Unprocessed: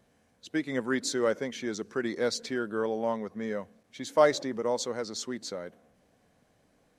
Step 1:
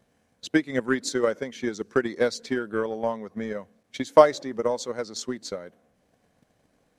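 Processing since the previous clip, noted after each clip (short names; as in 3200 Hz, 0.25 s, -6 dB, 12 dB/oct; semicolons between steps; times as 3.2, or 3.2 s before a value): transient shaper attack +12 dB, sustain -1 dB; gain -1 dB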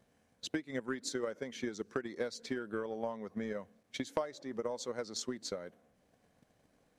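compressor 5:1, threshold -30 dBFS, peak gain reduction 19.5 dB; gain -4 dB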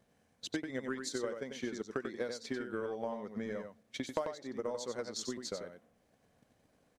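echo 92 ms -6.5 dB; gain -1 dB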